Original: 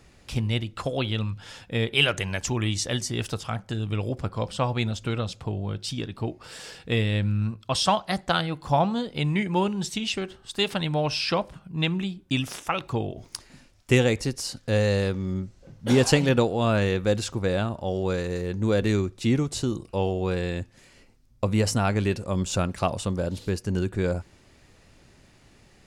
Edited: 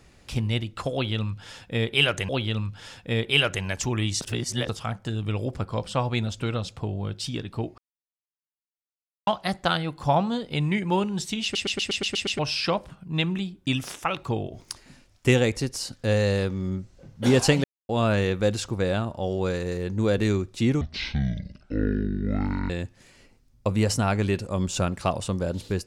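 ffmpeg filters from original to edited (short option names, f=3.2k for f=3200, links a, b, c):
-filter_complex "[0:a]asplit=18[a][b][c][d][e][f][g][h][i][j][k][l][m][n][o][p][q][r];[a]atrim=end=2.292[s];[b]atrim=start=0.928:end=2.852[t];[c]atrim=start=2.848:end=3.332,asetpts=PTS-STARTPTS,areverse[u];[d]atrim=start=3.328:end=6.42,asetpts=PTS-STARTPTS,afade=t=out:st=3.088:d=0.004:c=hsin[v];[e]atrim=start=6.42:end=7.91,asetpts=PTS-STARTPTS,volume=0[w];[f]atrim=start=7.91:end=10.192,asetpts=PTS-STARTPTS,afade=t=in:d=0.004:c=hsin[x];[g]atrim=start=10.068:end=10.192[y];[h]atrim=start=10.068:end=10.192[z];[i]atrim=start=10.068:end=10.192[aa];[j]atrim=start=10.068:end=10.192[ab];[k]atrim=start=10.068:end=10.192[ac];[l]atrim=start=10.068:end=10.192[ad];[m]atrim=start=10.068:end=10.192[ae];[n]atrim=start=11.028:end=16.28,asetpts=PTS-STARTPTS,afade=t=out:st=5.248:d=0.004:c=hsin[af];[o]atrim=start=16.28:end=16.53,asetpts=PTS-STARTPTS,volume=0[ag];[p]atrim=start=16.53:end=19.454,asetpts=PTS-STARTPTS,afade=t=in:d=0.004:c=hsin[ah];[q]atrim=start=19.45:end=20.47,asetpts=PTS-STARTPTS,asetrate=23814,aresample=44100[ai];[r]atrim=start=20.466[aj];[s][t]acrossfade=d=0.004:c1=hsin:c2=hsin[ak];[ak][u]acrossfade=d=0.004:c1=hsin:c2=hsin[al];[v][w][x]concat=n=3:v=0:a=1[am];[al][am]acrossfade=d=0.004:c1=hsin:c2=hsin[an];[an][y]acrossfade=d=0.004:c1=hsin:c2=hsin[ao];[ao][z]acrossfade=d=0.004:c1=hsin:c2=hsin[ap];[ap][aa]acrossfade=d=0.004:c1=hsin:c2=hsin[aq];[aq][ab]acrossfade=d=0.004:c1=hsin:c2=hsin[ar];[ar][ac]acrossfade=d=0.004:c1=hsin:c2=hsin[as];[as][ad]acrossfade=d=0.004:c1=hsin:c2=hsin[at];[at][ae]acrossfade=d=0.004:c1=hsin:c2=hsin[au];[af][ag][ah]concat=n=3:v=0:a=1[av];[au][av]acrossfade=d=0.004:c1=hsin:c2=hsin[aw];[aw][ai]acrossfade=d=0.004:c1=hsin:c2=hsin[ax];[ax][aj]acrossfade=d=0.004:c1=hsin:c2=hsin"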